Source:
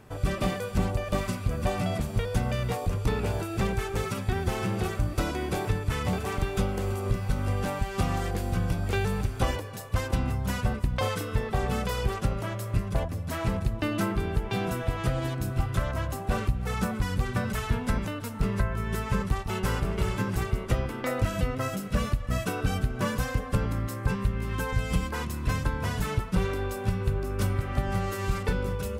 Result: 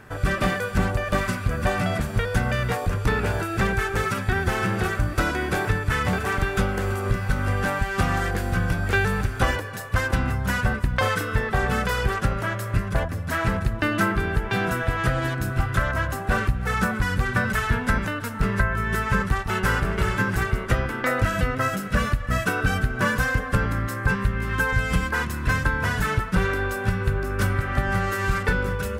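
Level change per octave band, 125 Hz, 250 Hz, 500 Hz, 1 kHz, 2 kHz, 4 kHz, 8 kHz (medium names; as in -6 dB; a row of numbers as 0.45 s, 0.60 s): +3.5 dB, +3.5 dB, +4.0 dB, +7.0 dB, +12.5 dB, +4.5 dB, +3.5 dB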